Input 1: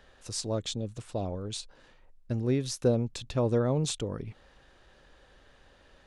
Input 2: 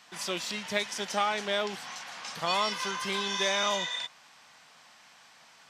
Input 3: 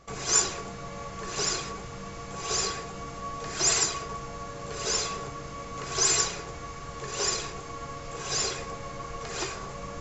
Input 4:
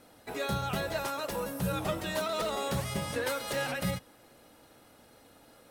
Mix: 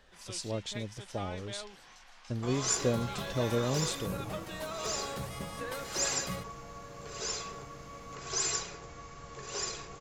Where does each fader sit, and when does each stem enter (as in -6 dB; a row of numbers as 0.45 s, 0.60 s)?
-4.5 dB, -15.0 dB, -8.0 dB, -7.5 dB; 0.00 s, 0.00 s, 2.35 s, 2.45 s